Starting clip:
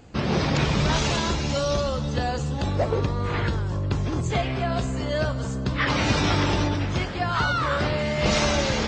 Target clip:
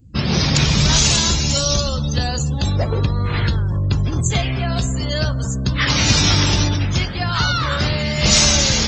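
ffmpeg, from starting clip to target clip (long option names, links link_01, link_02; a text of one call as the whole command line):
ffmpeg -i in.wav -af "afftdn=noise_reduction=30:noise_floor=-40,bass=frequency=250:gain=10,treble=frequency=4000:gain=5,crystalizer=i=6.5:c=0,volume=-2dB" out.wav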